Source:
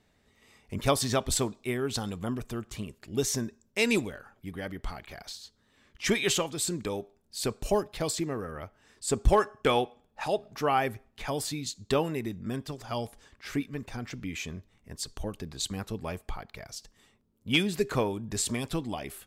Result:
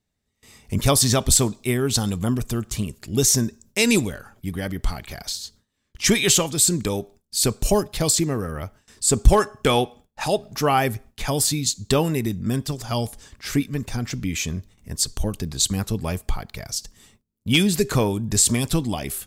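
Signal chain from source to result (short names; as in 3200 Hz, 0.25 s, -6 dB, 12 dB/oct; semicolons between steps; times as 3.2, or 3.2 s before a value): tone controls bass +7 dB, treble +10 dB; in parallel at 0 dB: limiter -15 dBFS, peak gain reduction 10.5 dB; on the sum: gate with hold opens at -41 dBFS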